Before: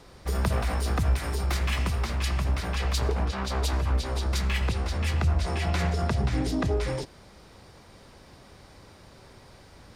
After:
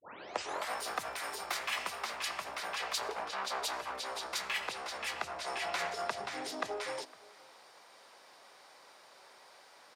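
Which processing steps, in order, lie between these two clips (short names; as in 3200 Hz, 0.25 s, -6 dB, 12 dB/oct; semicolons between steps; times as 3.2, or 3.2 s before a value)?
tape start at the beginning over 0.72 s; Chebyshev high-pass 750 Hz, order 2; outdoor echo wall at 87 m, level -22 dB; gain -2 dB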